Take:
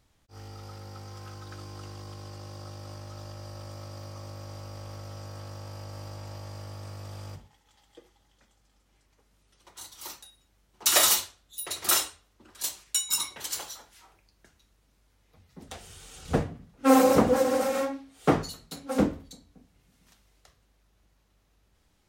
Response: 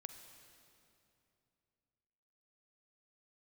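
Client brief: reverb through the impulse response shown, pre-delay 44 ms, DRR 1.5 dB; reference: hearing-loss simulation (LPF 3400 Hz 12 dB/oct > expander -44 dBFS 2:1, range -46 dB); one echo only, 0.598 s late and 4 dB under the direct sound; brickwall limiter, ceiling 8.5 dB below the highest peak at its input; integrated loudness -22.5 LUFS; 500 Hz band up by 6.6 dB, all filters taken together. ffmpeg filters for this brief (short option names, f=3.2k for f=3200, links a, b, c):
-filter_complex "[0:a]equalizer=f=500:t=o:g=7,alimiter=limit=-11.5dB:level=0:latency=1,aecho=1:1:598:0.631,asplit=2[a][b];[1:a]atrim=start_sample=2205,adelay=44[c];[b][c]afir=irnorm=-1:irlink=0,volume=3.5dB[d];[a][d]amix=inputs=2:normalize=0,lowpass=3.4k,agate=range=-46dB:threshold=-44dB:ratio=2,volume=2.5dB"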